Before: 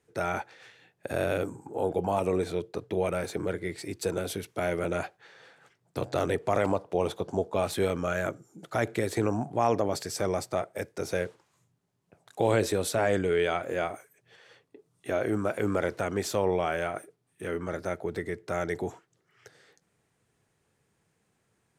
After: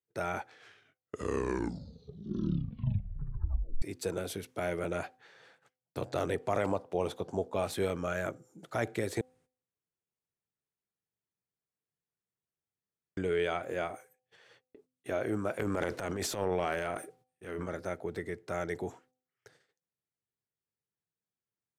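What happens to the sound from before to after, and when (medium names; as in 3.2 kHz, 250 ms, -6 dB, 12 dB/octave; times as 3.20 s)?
0.38 s: tape stop 3.44 s
9.21–13.17 s: room tone
15.59–17.66 s: transient shaper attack -10 dB, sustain +8 dB
whole clip: gate -57 dBFS, range -22 dB; de-hum 255 Hz, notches 3; trim -4.5 dB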